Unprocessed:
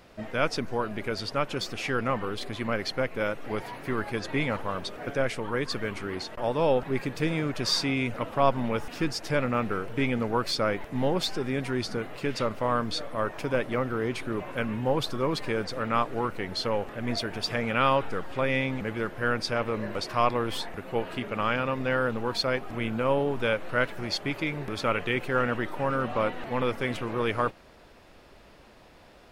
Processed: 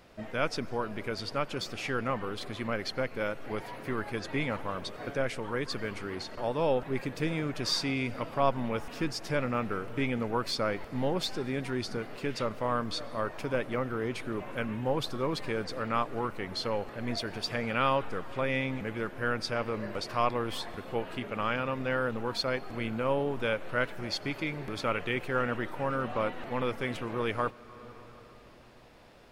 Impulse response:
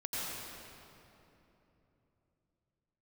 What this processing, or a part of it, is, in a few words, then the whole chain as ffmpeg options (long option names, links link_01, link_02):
ducked reverb: -filter_complex "[0:a]asplit=3[link_01][link_02][link_03];[1:a]atrim=start_sample=2205[link_04];[link_02][link_04]afir=irnorm=-1:irlink=0[link_05];[link_03]apad=whole_len=1292878[link_06];[link_05][link_06]sidechaincompress=threshold=-36dB:ratio=8:attack=45:release=498,volume=-14.5dB[link_07];[link_01][link_07]amix=inputs=2:normalize=0,volume=-4dB"